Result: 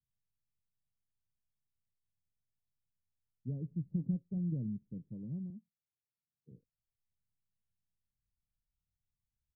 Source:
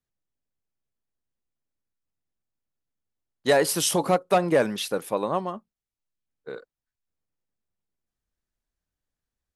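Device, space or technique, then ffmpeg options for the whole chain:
the neighbour's flat through the wall: -filter_complex "[0:a]lowpass=frequency=190:width=0.5412,lowpass=frequency=190:width=1.3066,equalizer=frequency=110:width_type=o:width=0.96:gain=5,asettb=1/sr,asplit=3[link_01][link_02][link_03];[link_01]atrim=end=5.504[link_04];[link_02]atrim=start=5.5:end=6.52,asetpts=PTS-STARTPTS,afade=type=in:duration=0.004:curve=qsin,afade=type=out:start_time=1.016:duration=0.004:curve=qsin,highpass=160[link_05];[link_03]atrim=start=6.516[link_06];[link_04][link_05]acrossfade=duration=0.004:curve1=hsin:curve2=qsin[link_07];[link_07][link_06]acrossfade=duration=0.004:curve1=qsin:curve2=hsin,volume=-3dB"

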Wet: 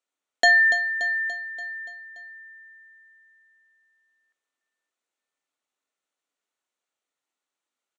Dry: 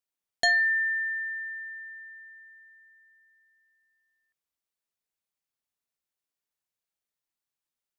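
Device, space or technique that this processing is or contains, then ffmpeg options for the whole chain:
car door speaker: -af "highpass=310,highpass=96,equalizer=frequency=270:width_type=q:width=4:gain=7,equalizer=frequency=1400:width_type=q:width=4:gain=5,equalizer=frequency=5000:width_type=q:width=4:gain=-8,lowpass=frequency=8100:width=0.5412,lowpass=frequency=8100:width=1.3066,equalizer=frequency=540:width=1.3:gain=3,bandreject=frequency=1600:width=15,aecho=1:1:288|576|864|1152|1440|1728:0.282|0.161|0.0916|0.0522|0.0298|0.017,volume=5.5dB"

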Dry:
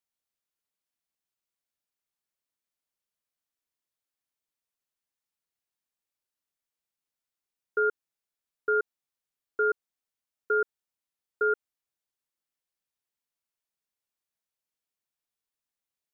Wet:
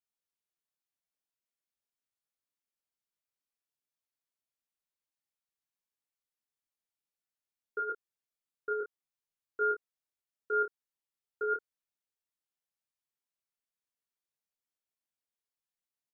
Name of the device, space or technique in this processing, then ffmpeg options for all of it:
double-tracked vocal: -filter_complex "[0:a]asplit=2[link_01][link_02];[link_02]adelay=29,volume=-6.5dB[link_03];[link_01][link_03]amix=inputs=2:normalize=0,flanger=delay=19:depth=2.9:speed=0.41,volume=-4dB"

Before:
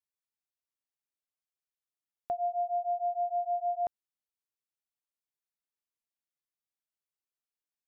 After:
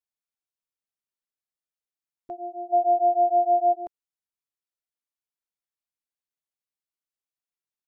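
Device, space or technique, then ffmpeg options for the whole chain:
octave pedal: -filter_complex "[0:a]asplit=2[link_01][link_02];[link_02]asetrate=22050,aresample=44100,atempo=2,volume=-8dB[link_03];[link_01][link_03]amix=inputs=2:normalize=0,asplit=3[link_04][link_05][link_06];[link_04]afade=type=out:start_time=2.72:duration=0.02[link_07];[link_05]equalizer=frequency=690:width_type=o:width=1.2:gain=15,afade=type=in:start_time=2.72:duration=0.02,afade=type=out:start_time=3.72:duration=0.02[link_08];[link_06]afade=type=in:start_time=3.72:duration=0.02[link_09];[link_07][link_08][link_09]amix=inputs=3:normalize=0,volume=-4dB"

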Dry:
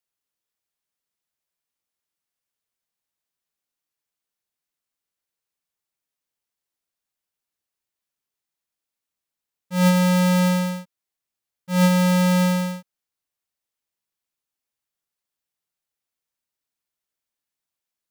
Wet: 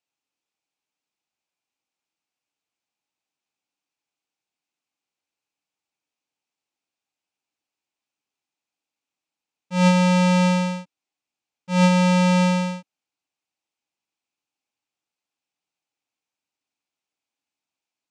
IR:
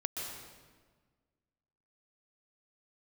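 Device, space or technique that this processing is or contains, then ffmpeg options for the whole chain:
car door speaker: -af "highpass=100,equalizer=frequency=290:width_type=q:width=4:gain=8,equalizer=frequency=810:width_type=q:width=4:gain=7,equalizer=frequency=1800:width_type=q:width=4:gain=-4,equalizer=frequency=2500:width_type=q:width=4:gain=7,lowpass=frequency=7800:width=0.5412,lowpass=frequency=7800:width=1.3066"

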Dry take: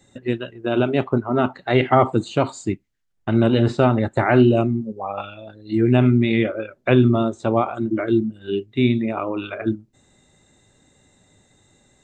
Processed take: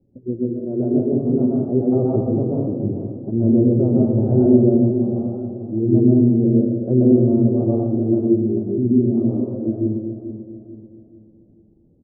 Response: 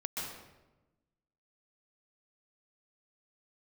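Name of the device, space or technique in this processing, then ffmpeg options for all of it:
next room: -filter_complex "[0:a]lowpass=frequency=460:width=0.5412,lowpass=frequency=460:width=1.3066[link_01];[1:a]atrim=start_sample=2205[link_02];[link_01][link_02]afir=irnorm=-1:irlink=0,asplit=2[link_03][link_04];[link_04]adelay=438,lowpass=frequency=2000:poles=1,volume=-10dB,asplit=2[link_05][link_06];[link_06]adelay=438,lowpass=frequency=2000:poles=1,volume=0.42,asplit=2[link_07][link_08];[link_08]adelay=438,lowpass=frequency=2000:poles=1,volume=0.42,asplit=2[link_09][link_10];[link_10]adelay=438,lowpass=frequency=2000:poles=1,volume=0.42[link_11];[link_03][link_05][link_07][link_09][link_11]amix=inputs=5:normalize=0"

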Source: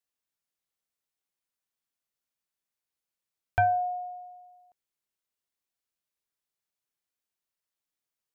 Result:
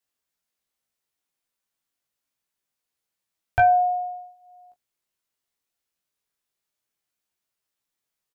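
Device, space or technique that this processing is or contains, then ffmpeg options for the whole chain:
double-tracked vocal: -filter_complex "[0:a]asplit=2[link_01][link_02];[link_02]adelay=25,volume=-13.5dB[link_03];[link_01][link_03]amix=inputs=2:normalize=0,flanger=delay=15.5:depth=2.5:speed=0.26,volume=8dB"

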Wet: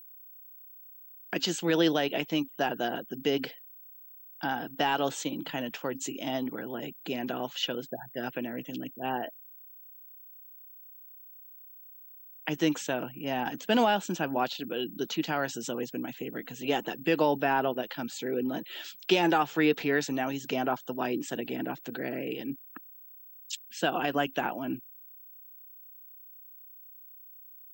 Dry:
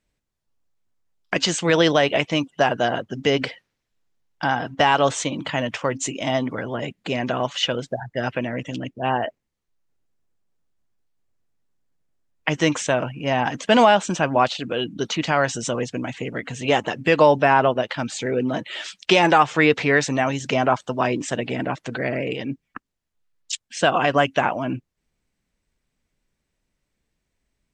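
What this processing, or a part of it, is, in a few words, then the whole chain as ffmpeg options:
old television with a line whistle: -af "highpass=frequency=160:width=0.5412,highpass=frequency=160:width=1.3066,equalizer=frequency=330:width_type=q:width=4:gain=4,equalizer=frequency=590:width_type=q:width=4:gain=-6,equalizer=frequency=1100:width_type=q:width=4:gain=-8,equalizer=frequency=2100:width_type=q:width=4:gain=-7,equalizer=frequency=5900:width_type=q:width=4:gain=-3,lowpass=frequency=8100:width=0.5412,lowpass=frequency=8100:width=1.3066,aeval=exprs='val(0)+0.01*sin(2*PI*15734*n/s)':channel_layout=same,volume=-7.5dB"

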